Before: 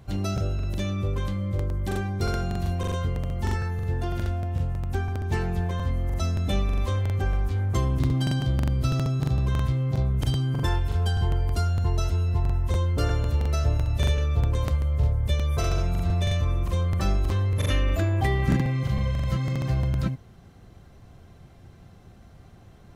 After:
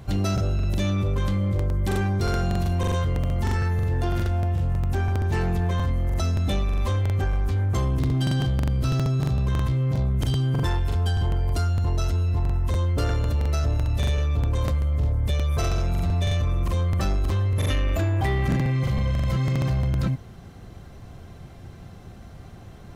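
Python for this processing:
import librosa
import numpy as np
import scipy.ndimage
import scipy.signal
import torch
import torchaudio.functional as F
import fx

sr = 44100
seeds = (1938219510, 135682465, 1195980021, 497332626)

p1 = fx.over_compress(x, sr, threshold_db=-28.0, ratio=-1.0)
p2 = x + (p1 * 10.0 ** (-2.0 / 20.0))
y = 10.0 ** (-16.0 / 20.0) * np.tanh(p2 / 10.0 ** (-16.0 / 20.0))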